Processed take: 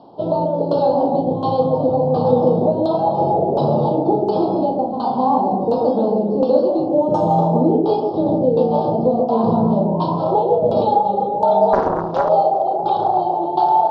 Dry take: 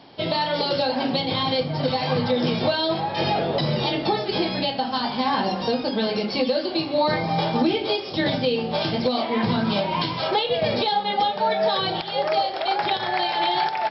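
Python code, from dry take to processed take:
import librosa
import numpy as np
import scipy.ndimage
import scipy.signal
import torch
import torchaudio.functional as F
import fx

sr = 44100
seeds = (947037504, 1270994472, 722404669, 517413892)

y = fx.doubler(x, sr, ms=35.0, db=-6.0)
y = fx.echo_alternate(y, sr, ms=137, hz=900.0, feedback_pct=53, wet_db=-2)
y = fx.resample_bad(y, sr, factor=6, down='none', up='hold', at=(6.88, 7.61))
y = fx.filter_lfo_lowpass(y, sr, shape='saw_down', hz=1.4, low_hz=460.0, high_hz=1800.0, q=0.95)
y = scipy.signal.sosfilt(scipy.signal.cheby1(2, 1.0, [860.0, 4400.0], 'bandstop', fs=sr, output='sos'), y)
y = fx.low_shelf(y, sr, hz=150.0, db=-8.5)
y = fx.doppler_dist(y, sr, depth_ms=0.57, at=(11.73, 12.29))
y = y * librosa.db_to_amplitude(6.0)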